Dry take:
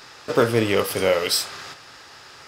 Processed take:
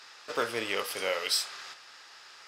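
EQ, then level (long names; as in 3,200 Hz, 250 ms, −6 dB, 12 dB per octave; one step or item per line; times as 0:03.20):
high-pass filter 1,300 Hz 6 dB per octave
high-shelf EQ 12,000 Hz −10.5 dB
−4.5 dB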